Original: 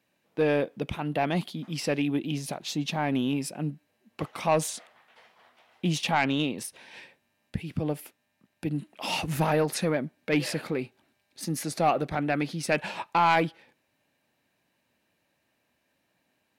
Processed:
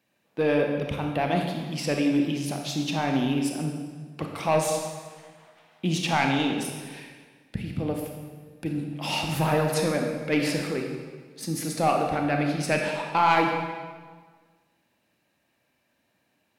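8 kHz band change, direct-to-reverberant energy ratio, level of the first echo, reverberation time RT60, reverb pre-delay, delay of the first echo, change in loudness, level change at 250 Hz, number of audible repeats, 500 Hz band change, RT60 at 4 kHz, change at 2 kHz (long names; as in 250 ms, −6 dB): +2.0 dB, 2.0 dB, no echo audible, 1.5 s, 27 ms, no echo audible, +2.0 dB, +3.0 dB, no echo audible, +2.5 dB, 1.3 s, +2.0 dB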